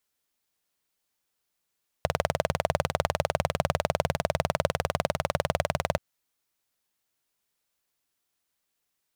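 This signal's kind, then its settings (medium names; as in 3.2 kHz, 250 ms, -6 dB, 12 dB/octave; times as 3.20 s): single-cylinder engine model, steady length 3.93 s, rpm 2400, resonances 86/140/580 Hz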